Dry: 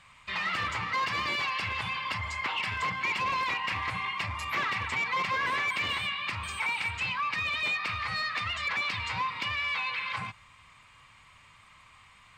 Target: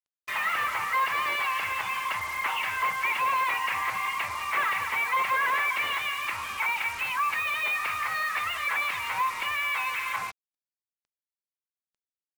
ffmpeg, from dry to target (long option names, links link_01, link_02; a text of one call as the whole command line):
ffmpeg -i in.wav -filter_complex "[0:a]acrossover=split=470 2900:gain=0.126 1 0.0631[link_01][link_02][link_03];[link_01][link_02][link_03]amix=inputs=3:normalize=0,acrusher=bits=6:mix=0:aa=0.5,volume=5dB" out.wav